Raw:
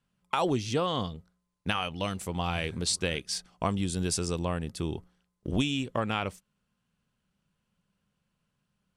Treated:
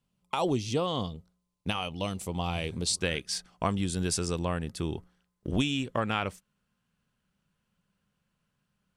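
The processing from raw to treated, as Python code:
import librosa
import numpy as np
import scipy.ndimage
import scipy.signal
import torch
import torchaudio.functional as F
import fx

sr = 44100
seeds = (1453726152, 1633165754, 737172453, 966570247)

y = fx.peak_eq(x, sr, hz=1600.0, db=fx.steps((0.0, -8.5), (3.01, 2.5)), octaves=0.77)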